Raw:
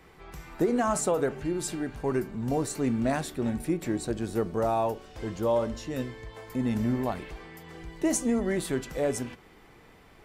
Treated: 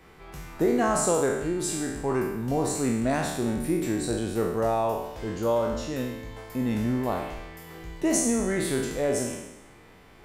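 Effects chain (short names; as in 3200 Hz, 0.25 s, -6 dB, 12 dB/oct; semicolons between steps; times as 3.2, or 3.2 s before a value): spectral trails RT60 0.98 s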